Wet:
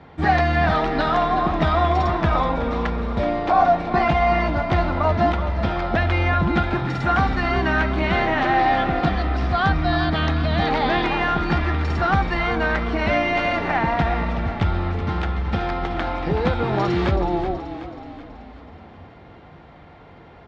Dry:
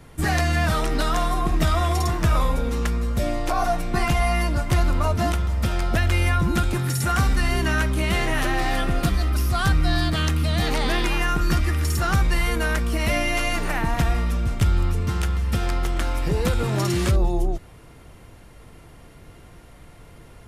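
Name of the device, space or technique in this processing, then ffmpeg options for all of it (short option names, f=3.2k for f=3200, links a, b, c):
frequency-shifting delay pedal into a guitar cabinet: -filter_complex "[0:a]asplit=7[a][b][c][d][e][f][g];[b]adelay=376,afreqshift=-31,volume=-10.5dB[h];[c]adelay=752,afreqshift=-62,volume=-16dB[i];[d]adelay=1128,afreqshift=-93,volume=-21.5dB[j];[e]adelay=1504,afreqshift=-124,volume=-27dB[k];[f]adelay=1880,afreqshift=-155,volume=-32.6dB[l];[g]adelay=2256,afreqshift=-186,volume=-38.1dB[m];[a][h][i][j][k][l][m]amix=inputs=7:normalize=0,highpass=77,equalizer=f=120:t=q:w=4:g=-8,equalizer=f=790:t=q:w=4:g=8,equalizer=f=2.8k:t=q:w=4:g=-5,lowpass=f=3.7k:w=0.5412,lowpass=f=3.7k:w=1.3066,volume=3dB"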